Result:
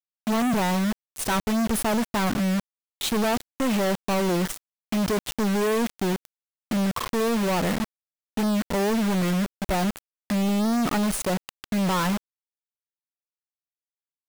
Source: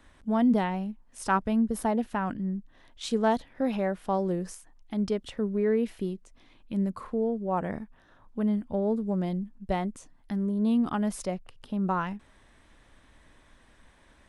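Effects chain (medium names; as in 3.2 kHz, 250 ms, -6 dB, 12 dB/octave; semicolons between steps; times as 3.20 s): dynamic bell 5.1 kHz, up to -6 dB, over -59 dBFS, Q 2.3; companded quantiser 2-bit; trim +3 dB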